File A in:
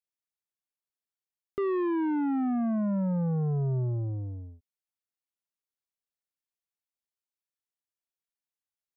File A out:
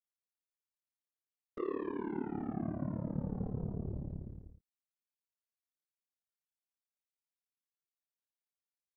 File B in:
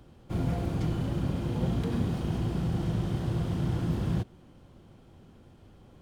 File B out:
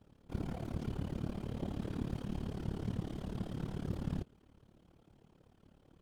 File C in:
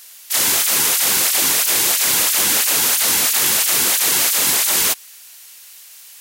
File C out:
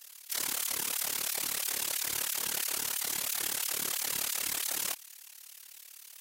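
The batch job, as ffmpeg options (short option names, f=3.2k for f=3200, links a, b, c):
-af "afftfilt=real='hypot(re,im)*cos(2*PI*random(0))':imag='hypot(re,im)*sin(2*PI*random(1))':win_size=512:overlap=0.75,alimiter=limit=-20.5dB:level=0:latency=1:release=13,tremolo=f=36:d=0.857"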